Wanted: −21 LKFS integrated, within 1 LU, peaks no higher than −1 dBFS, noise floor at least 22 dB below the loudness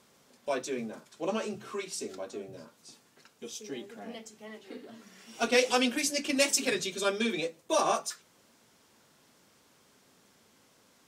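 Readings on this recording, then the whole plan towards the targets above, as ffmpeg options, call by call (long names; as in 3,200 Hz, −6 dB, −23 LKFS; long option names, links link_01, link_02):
integrated loudness −31.0 LKFS; sample peak −9.5 dBFS; target loudness −21.0 LKFS
→ -af "volume=10dB,alimiter=limit=-1dB:level=0:latency=1"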